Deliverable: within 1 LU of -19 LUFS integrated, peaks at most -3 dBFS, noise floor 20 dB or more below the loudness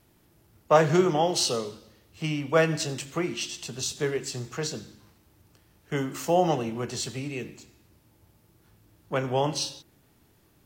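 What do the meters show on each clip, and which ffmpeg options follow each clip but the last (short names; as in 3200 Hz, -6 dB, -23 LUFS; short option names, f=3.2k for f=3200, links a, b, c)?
loudness -27.0 LUFS; peak -6.0 dBFS; loudness target -19.0 LUFS
-> -af "volume=8dB,alimiter=limit=-3dB:level=0:latency=1"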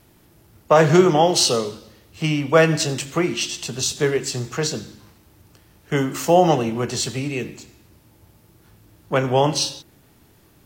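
loudness -19.5 LUFS; peak -3.0 dBFS; noise floor -55 dBFS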